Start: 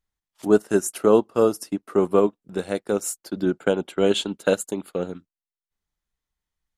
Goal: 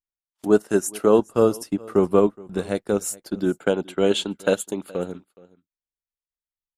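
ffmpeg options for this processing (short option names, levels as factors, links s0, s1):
-filter_complex "[0:a]agate=range=0.1:threshold=0.00708:ratio=16:detection=peak,asettb=1/sr,asplit=3[s0][s1][s2];[s0]atrim=end=1.194[s3];[s1]atrim=start=1.19:end=3.35,asetpts=PTS-STARTPTS,afade=t=in:d=0.004:c=qsin,afade=t=out:st=2.156:d=0.004:c=qsin,lowshelf=f=130:g=10[s4];[s2]atrim=start=3.346[s5];[s3][s4]acrossfade=d=0.004:c1=hsin:c2=qsin[s6];[s6][s5]acrossfade=d=0.004:c1=qsin:c2=hsin,aecho=1:1:420:0.0708"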